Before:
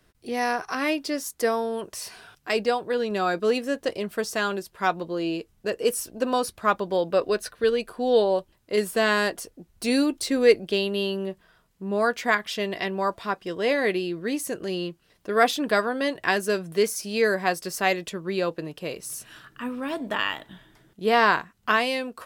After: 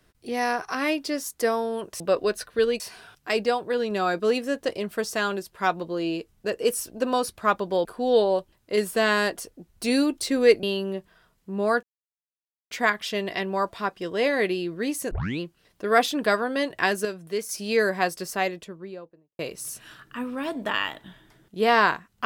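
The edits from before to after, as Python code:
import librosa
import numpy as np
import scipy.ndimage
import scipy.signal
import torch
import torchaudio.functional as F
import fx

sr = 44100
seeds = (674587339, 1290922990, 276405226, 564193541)

y = fx.studio_fade_out(x, sr, start_s=17.48, length_s=1.36)
y = fx.edit(y, sr, fx.move(start_s=7.05, length_s=0.8, to_s=2.0),
    fx.cut(start_s=10.63, length_s=0.33),
    fx.insert_silence(at_s=12.16, length_s=0.88),
    fx.tape_start(start_s=14.56, length_s=0.29),
    fx.clip_gain(start_s=16.5, length_s=0.44, db=-6.5), tone=tone)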